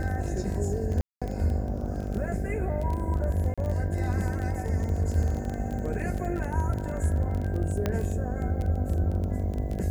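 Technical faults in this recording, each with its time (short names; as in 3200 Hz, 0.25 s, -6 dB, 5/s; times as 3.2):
buzz 50 Hz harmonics 15 -33 dBFS
crackle 19/s -30 dBFS
1.01–1.22 gap 0.206 s
3.54–3.58 gap 36 ms
7.86 pop -13 dBFS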